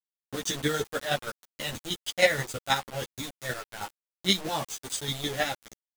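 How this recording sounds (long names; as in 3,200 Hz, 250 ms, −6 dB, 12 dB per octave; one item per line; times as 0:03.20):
chopped level 6.3 Hz, depth 60%, duty 20%
a quantiser's noise floor 6 bits, dither none
a shimmering, thickened sound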